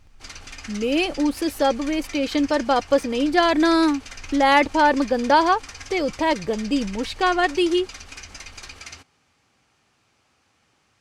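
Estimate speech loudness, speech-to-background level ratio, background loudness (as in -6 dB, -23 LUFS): -21.0 LUFS, 17.5 dB, -38.5 LUFS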